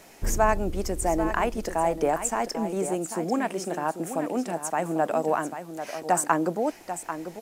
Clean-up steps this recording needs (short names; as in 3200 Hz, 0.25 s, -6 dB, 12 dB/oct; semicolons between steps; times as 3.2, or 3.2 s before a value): expander -32 dBFS, range -21 dB; inverse comb 0.792 s -10 dB